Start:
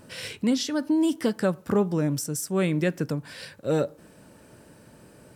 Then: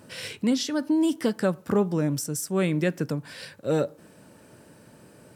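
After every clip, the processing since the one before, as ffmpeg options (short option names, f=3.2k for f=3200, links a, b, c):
-af "highpass=80"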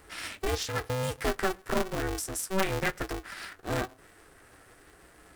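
-af "equalizer=f=630:t=o:w=0.67:g=-5,equalizer=f=1.6k:t=o:w=0.67:g=11,equalizer=f=10k:t=o:w=0.67:g=5,flanger=delay=7.7:depth=2.8:regen=46:speed=0.97:shape=triangular,aeval=exprs='val(0)*sgn(sin(2*PI*190*n/s))':c=same,volume=-1.5dB"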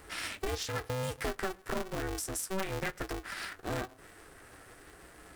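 -af "acompressor=threshold=-37dB:ratio=2.5,volume=2dB"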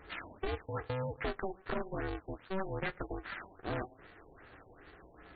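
-af "afftfilt=real='re*lt(b*sr/1024,940*pow(4700/940,0.5+0.5*sin(2*PI*2.5*pts/sr)))':imag='im*lt(b*sr/1024,940*pow(4700/940,0.5+0.5*sin(2*PI*2.5*pts/sr)))':win_size=1024:overlap=0.75,volume=-1.5dB"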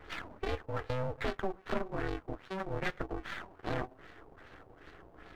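-af "aeval=exprs='if(lt(val(0),0),0.251*val(0),val(0))':c=same,volume=5dB"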